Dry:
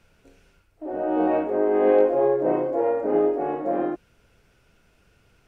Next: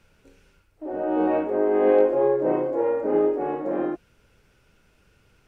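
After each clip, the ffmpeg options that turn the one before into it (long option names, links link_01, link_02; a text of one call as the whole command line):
ffmpeg -i in.wav -af "bandreject=frequency=690:width=12" out.wav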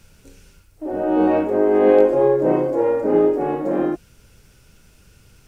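ffmpeg -i in.wav -af "bass=frequency=250:gain=7,treble=frequency=4000:gain=12,volume=4dB" out.wav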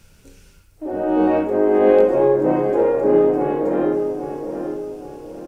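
ffmpeg -i in.wav -filter_complex "[0:a]asplit=2[link_01][link_02];[link_02]adelay=816,lowpass=frequency=2000:poles=1,volume=-7dB,asplit=2[link_03][link_04];[link_04]adelay=816,lowpass=frequency=2000:poles=1,volume=0.43,asplit=2[link_05][link_06];[link_06]adelay=816,lowpass=frequency=2000:poles=1,volume=0.43,asplit=2[link_07][link_08];[link_08]adelay=816,lowpass=frequency=2000:poles=1,volume=0.43,asplit=2[link_09][link_10];[link_10]adelay=816,lowpass=frequency=2000:poles=1,volume=0.43[link_11];[link_01][link_03][link_05][link_07][link_09][link_11]amix=inputs=6:normalize=0" out.wav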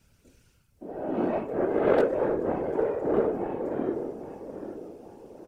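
ffmpeg -i in.wav -af "aeval=exprs='0.794*(cos(1*acos(clip(val(0)/0.794,-1,1)))-cos(1*PI/2))+0.158*(cos(3*acos(clip(val(0)/0.794,-1,1)))-cos(3*PI/2))':channel_layout=same,afftfilt=real='hypot(re,im)*cos(2*PI*random(0))':imag='hypot(re,im)*sin(2*PI*random(1))':win_size=512:overlap=0.75,volume=1.5dB" out.wav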